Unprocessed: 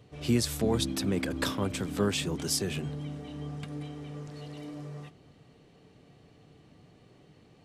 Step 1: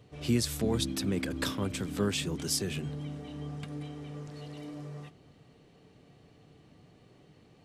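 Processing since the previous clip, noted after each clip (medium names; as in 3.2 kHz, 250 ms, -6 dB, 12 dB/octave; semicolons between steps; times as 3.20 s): dynamic bell 770 Hz, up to -4 dB, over -43 dBFS, Q 0.92; trim -1 dB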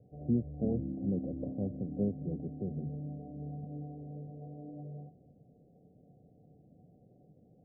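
rippled Chebyshev low-pass 760 Hz, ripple 6 dB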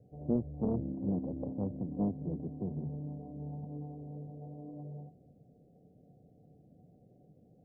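loudspeaker Doppler distortion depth 0.72 ms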